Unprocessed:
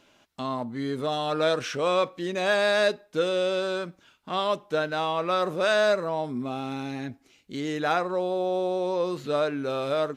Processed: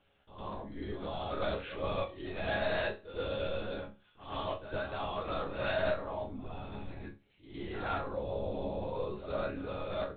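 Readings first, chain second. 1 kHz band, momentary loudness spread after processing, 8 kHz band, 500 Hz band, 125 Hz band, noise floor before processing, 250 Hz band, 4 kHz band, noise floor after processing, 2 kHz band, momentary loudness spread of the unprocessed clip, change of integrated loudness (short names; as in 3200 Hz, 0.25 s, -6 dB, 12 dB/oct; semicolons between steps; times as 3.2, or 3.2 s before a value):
-10.5 dB, 12 LU, under -35 dB, -11.0 dB, -4.0 dB, -62 dBFS, -11.0 dB, -12.0 dB, -67 dBFS, -10.0 dB, 10 LU, -10.5 dB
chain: LPC vocoder at 8 kHz whisper; resonator bank C#2 sus4, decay 0.27 s; reverse echo 0.108 s -11 dB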